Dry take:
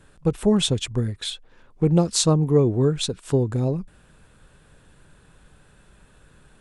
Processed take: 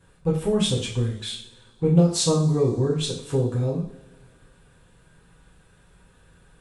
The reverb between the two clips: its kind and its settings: two-slope reverb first 0.47 s, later 2.1 s, from -22 dB, DRR -5 dB; gain -8 dB

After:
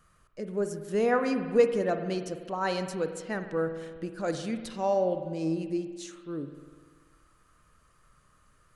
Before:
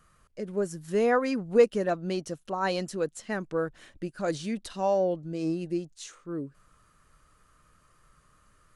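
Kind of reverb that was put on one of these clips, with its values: spring tank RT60 1.6 s, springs 49 ms, chirp 50 ms, DRR 8 dB; gain -1.5 dB

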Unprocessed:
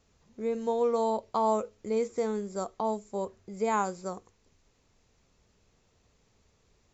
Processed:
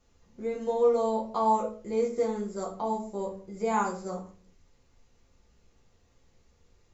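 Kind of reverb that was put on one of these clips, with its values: shoebox room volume 32 m³, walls mixed, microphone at 0.81 m; gain -5 dB

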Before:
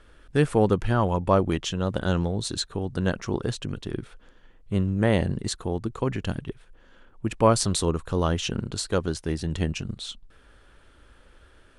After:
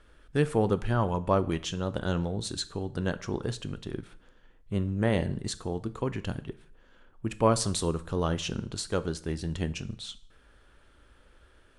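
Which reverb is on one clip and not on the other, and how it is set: plate-style reverb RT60 0.56 s, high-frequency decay 0.9×, DRR 13 dB; gain -4.5 dB

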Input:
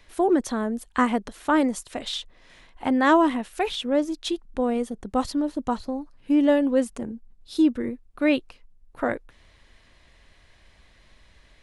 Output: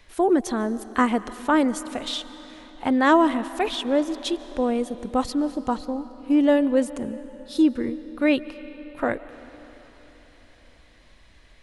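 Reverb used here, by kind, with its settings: digital reverb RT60 4.3 s, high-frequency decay 0.8×, pre-delay 0.1 s, DRR 15 dB; gain +1 dB

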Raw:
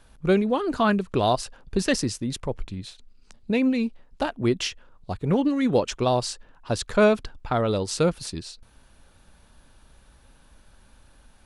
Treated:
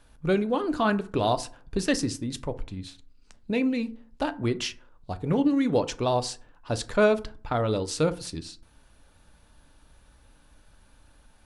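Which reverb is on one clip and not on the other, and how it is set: FDN reverb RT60 0.43 s, low-frequency decay 1.2×, high-frequency decay 0.5×, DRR 10 dB; gain -3 dB

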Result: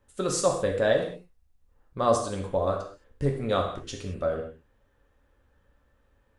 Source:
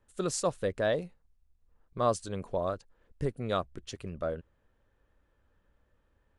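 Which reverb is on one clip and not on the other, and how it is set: non-linear reverb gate 0.24 s falling, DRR 1 dB; gain +3 dB

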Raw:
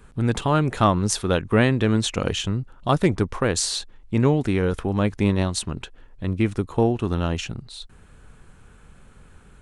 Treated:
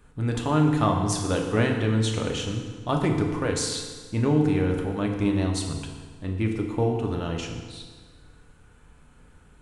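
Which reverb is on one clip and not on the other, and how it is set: FDN reverb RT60 1.6 s, low-frequency decay 1×, high-frequency decay 0.8×, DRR 1 dB; gain -6.5 dB

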